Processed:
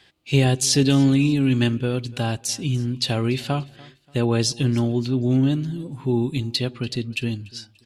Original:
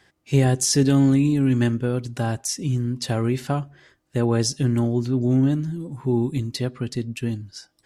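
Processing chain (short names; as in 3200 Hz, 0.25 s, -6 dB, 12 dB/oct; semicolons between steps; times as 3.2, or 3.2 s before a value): band shelf 3300 Hz +9.5 dB 1.1 oct; feedback echo 0.291 s, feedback 35%, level -22.5 dB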